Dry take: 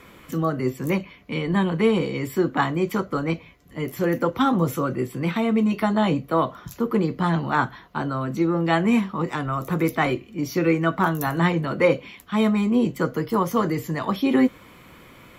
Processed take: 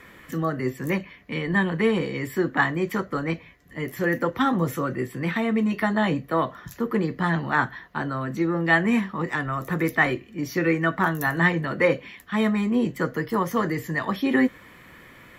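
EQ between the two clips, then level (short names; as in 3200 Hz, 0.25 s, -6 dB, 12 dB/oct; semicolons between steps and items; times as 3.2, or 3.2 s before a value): bell 1800 Hz +13 dB 0.27 oct; -2.5 dB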